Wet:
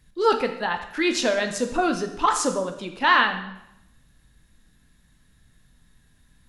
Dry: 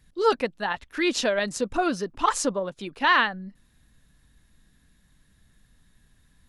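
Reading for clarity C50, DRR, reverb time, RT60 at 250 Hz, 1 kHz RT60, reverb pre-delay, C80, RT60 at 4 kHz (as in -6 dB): 8.5 dB, 5.5 dB, 0.80 s, 0.75 s, 0.85 s, 6 ms, 11.5 dB, 0.75 s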